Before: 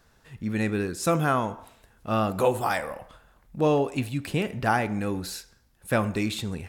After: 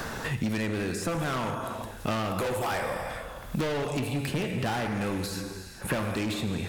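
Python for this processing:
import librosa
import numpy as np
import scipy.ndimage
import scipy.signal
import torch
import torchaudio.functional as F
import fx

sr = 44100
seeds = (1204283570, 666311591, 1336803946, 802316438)

y = fx.rev_gated(x, sr, seeds[0], gate_ms=470, shape='falling', drr_db=6.5)
y = np.clip(y, -10.0 ** (-27.0 / 20.0), 10.0 ** (-27.0 / 20.0))
y = fx.band_squash(y, sr, depth_pct=100)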